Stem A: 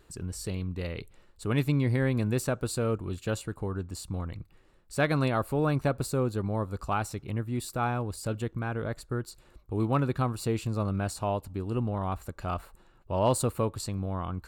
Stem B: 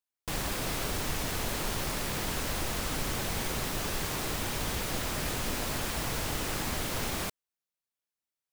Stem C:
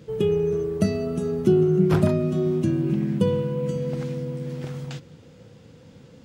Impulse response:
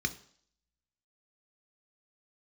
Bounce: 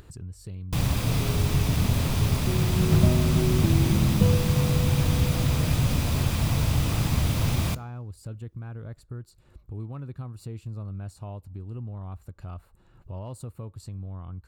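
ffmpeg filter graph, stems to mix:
-filter_complex "[0:a]alimiter=limit=-18.5dB:level=0:latency=1:release=349,volume=-15.5dB[link_01];[1:a]adelay=450,volume=1dB,asplit=2[link_02][link_03];[link_03]volume=-14.5dB[link_04];[2:a]adelay=1000,volume=-8dB,afade=type=in:start_time=2.7:duration=0.38:silence=0.281838[link_05];[3:a]atrim=start_sample=2205[link_06];[link_04][link_06]afir=irnorm=-1:irlink=0[link_07];[link_01][link_02][link_05][link_07]amix=inputs=4:normalize=0,equalizer=frequency=94:width_type=o:width=2.2:gain=13,acompressor=mode=upward:threshold=-33dB:ratio=2.5"

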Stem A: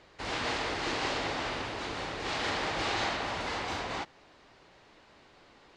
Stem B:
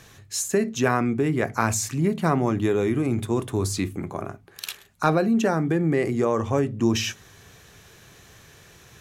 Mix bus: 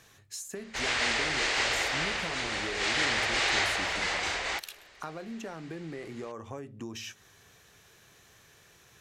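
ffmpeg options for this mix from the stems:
ffmpeg -i stem1.wav -i stem2.wav -filter_complex "[0:a]equalizer=frequency=125:width_type=o:width=1:gain=-12,equalizer=frequency=250:width_type=o:width=1:gain=-11,equalizer=frequency=1000:width_type=o:width=1:gain=-5,equalizer=frequency=2000:width_type=o:width=1:gain=6,equalizer=frequency=8000:width_type=o:width=1:gain=8,adelay=550,volume=3dB[link_01];[1:a]lowshelf=frequency=330:gain=-6.5,acompressor=threshold=-31dB:ratio=4,volume=-7dB[link_02];[link_01][link_02]amix=inputs=2:normalize=0" out.wav

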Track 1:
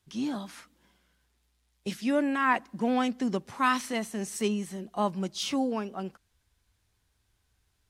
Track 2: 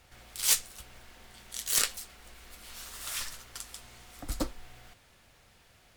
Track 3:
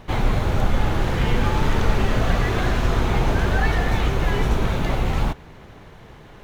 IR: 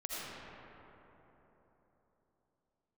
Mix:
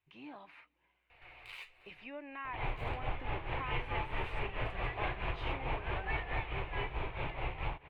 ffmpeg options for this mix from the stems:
-filter_complex "[0:a]volume=-13.5dB,asplit=2[link_01][link_02];[1:a]flanger=delay=4.1:depth=7.6:regen=45:speed=0.87:shape=sinusoidal,adelay=1100,volume=-2dB[link_03];[2:a]acompressor=threshold=-28dB:ratio=2,tremolo=f=4.6:d=0.73,adelay=2450,volume=-9dB[link_04];[link_02]apad=whole_len=311731[link_05];[link_03][link_05]sidechaincompress=threshold=-47dB:ratio=8:attack=16:release=950[link_06];[link_01][link_06]amix=inputs=2:normalize=0,bandreject=frequency=3300:width=9.6,acompressor=threshold=-44dB:ratio=8,volume=0dB[link_07];[link_04][link_07]amix=inputs=2:normalize=0,firequalizer=gain_entry='entry(150,0);entry(210,-14);entry(300,0);entry(960,8);entry(1400,1);entry(2400,13);entry(5600,-24)':delay=0.05:min_phase=1"

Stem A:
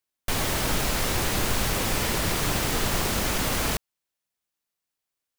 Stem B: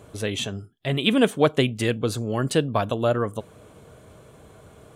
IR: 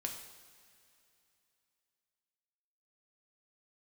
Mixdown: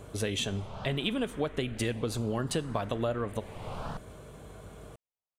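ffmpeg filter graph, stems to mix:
-filter_complex "[0:a]lowpass=1800,asplit=2[link_01][link_02];[link_02]afreqshift=0.66[link_03];[link_01][link_03]amix=inputs=2:normalize=1,adelay=200,volume=-6dB[link_04];[1:a]acompressor=threshold=-27dB:ratio=12,aeval=exprs='val(0)+0.00251*(sin(2*PI*50*n/s)+sin(2*PI*2*50*n/s)/2+sin(2*PI*3*50*n/s)/3+sin(2*PI*4*50*n/s)/4+sin(2*PI*5*50*n/s)/5)':channel_layout=same,volume=-2dB,asplit=3[link_05][link_06][link_07];[link_06]volume=-10.5dB[link_08];[link_07]apad=whole_len=246263[link_09];[link_04][link_09]sidechaincompress=threshold=-43dB:ratio=8:attack=25:release=390[link_10];[2:a]atrim=start_sample=2205[link_11];[link_08][link_11]afir=irnorm=-1:irlink=0[link_12];[link_10][link_05][link_12]amix=inputs=3:normalize=0"

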